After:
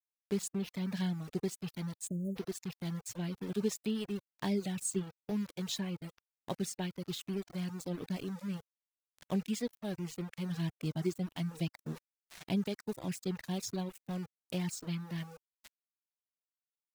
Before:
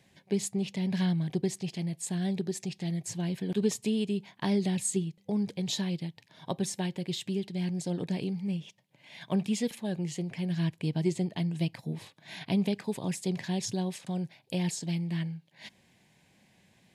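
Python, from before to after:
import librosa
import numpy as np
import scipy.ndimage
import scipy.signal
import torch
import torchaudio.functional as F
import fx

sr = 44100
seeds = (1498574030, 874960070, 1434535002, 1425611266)

y = np.where(np.abs(x) >= 10.0 ** (-37.5 / 20.0), x, 0.0)
y = fx.spec_erase(y, sr, start_s=2.07, length_s=0.29, low_hz=650.0, high_hz=6400.0)
y = fx.dereverb_blind(y, sr, rt60_s=0.94)
y = y * 10.0 ** (-4.5 / 20.0)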